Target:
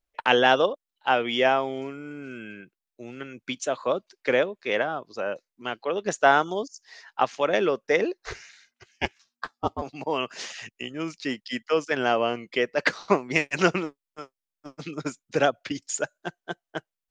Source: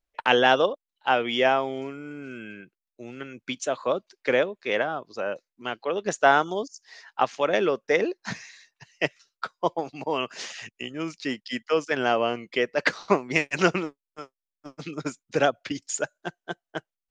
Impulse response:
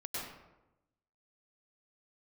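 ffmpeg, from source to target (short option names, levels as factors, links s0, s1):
-filter_complex "[0:a]asettb=1/sr,asplit=3[s0][s1][s2];[s0]atrim=end=8.244[s3];[s1]atrim=start=8.24:end=9.82,asetpts=PTS-STARTPTS,afade=t=in:d=0.004:c=qsin,afade=t=out:st=1.576:d=0.004:c=qsin,aeval=exprs='val(0)*sin(2*PI*240*n/s)':c=same[s4];[s2]atrim=start=9.816[s5];[s3][s4]acrossfade=d=0.004:c1=hsin:c2=qsin[s6];[s6][s5]acrossfade=d=0.004:c1=qsin:c2=hsin"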